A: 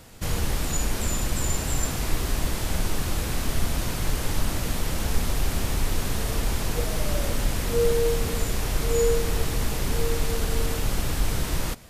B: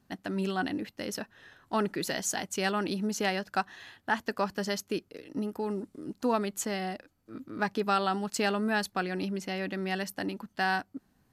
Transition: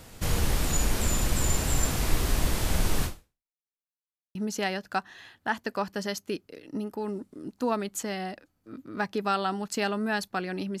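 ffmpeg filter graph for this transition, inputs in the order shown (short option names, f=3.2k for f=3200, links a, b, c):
-filter_complex "[0:a]apad=whole_dur=10.8,atrim=end=10.8,asplit=2[a][b];[a]atrim=end=3.53,asetpts=PTS-STARTPTS,afade=t=out:st=3.05:d=0.48:c=exp[c];[b]atrim=start=3.53:end=4.35,asetpts=PTS-STARTPTS,volume=0[d];[1:a]atrim=start=2.97:end=9.42,asetpts=PTS-STARTPTS,afade=t=in:d=0.004:c=hsin[e];[c][d][e]concat=n=3:v=0:a=1"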